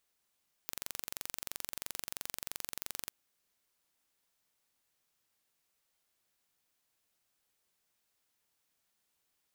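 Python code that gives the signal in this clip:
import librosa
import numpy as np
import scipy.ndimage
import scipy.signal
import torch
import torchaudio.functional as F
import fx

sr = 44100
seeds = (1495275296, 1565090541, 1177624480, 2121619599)

y = 10.0 ** (-11.0 / 20.0) * (np.mod(np.arange(round(2.41 * sr)), round(sr / 23.0)) == 0)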